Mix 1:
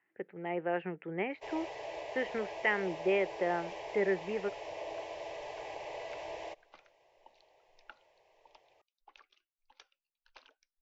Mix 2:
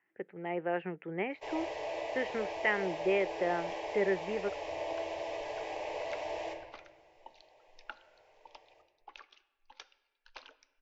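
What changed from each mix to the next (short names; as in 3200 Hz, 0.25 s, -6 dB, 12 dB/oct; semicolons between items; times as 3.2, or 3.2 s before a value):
second sound +7.0 dB; reverb: on, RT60 1.3 s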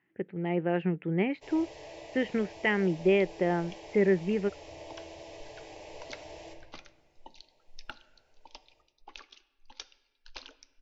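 first sound -11.0 dB; master: remove three-band isolator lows -15 dB, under 440 Hz, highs -12 dB, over 2600 Hz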